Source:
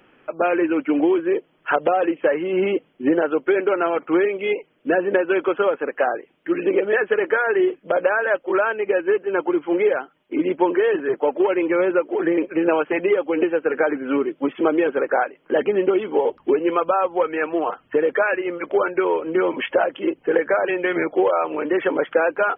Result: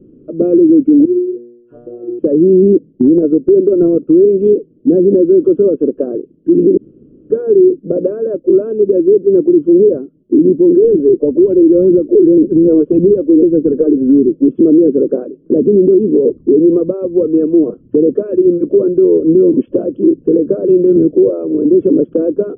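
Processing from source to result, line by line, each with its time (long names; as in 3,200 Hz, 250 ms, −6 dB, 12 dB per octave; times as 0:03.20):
0:01.05–0:02.19: tuned comb filter 120 Hz, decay 0.85 s, mix 100%
0:02.75–0:04.09: transient designer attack +11 dB, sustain −3 dB
0:06.77–0:07.30: fill with room tone
0:10.84–0:14.49: phase shifter 1.8 Hz, delay 2.9 ms, feedback 55%
0:20.96–0:21.81: multiband upward and downward expander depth 40%
whole clip: inverse Chebyshev low-pass filter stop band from 760 Hz, stop band 40 dB; dynamic equaliser 180 Hz, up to +3 dB, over −33 dBFS, Q 0.83; boost into a limiter +19.5 dB; level −1 dB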